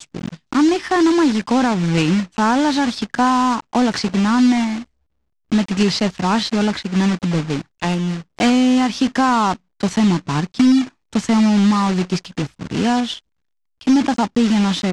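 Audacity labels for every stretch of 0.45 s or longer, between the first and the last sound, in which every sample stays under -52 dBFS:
4.860000	5.520000	silence
13.210000	13.810000	silence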